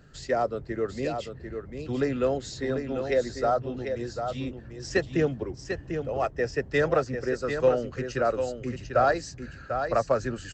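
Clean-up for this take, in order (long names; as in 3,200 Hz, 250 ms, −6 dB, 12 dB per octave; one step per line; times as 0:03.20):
echo removal 745 ms −7 dB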